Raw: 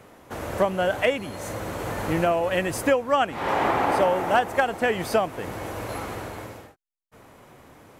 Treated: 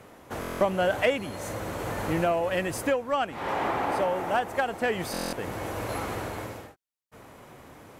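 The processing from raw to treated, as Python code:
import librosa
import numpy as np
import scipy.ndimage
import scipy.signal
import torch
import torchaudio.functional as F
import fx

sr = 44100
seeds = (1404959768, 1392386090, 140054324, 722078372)

y = fx.cheby_harmonics(x, sr, harmonics=(5,), levels_db=(-27,), full_scale_db=-9.0)
y = fx.rider(y, sr, range_db=4, speed_s=2.0)
y = fx.buffer_glitch(y, sr, at_s=(0.4, 5.12), block=1024, repeats=8)
y = F.gain(torch.from_numpy(y), -4.5).numpy()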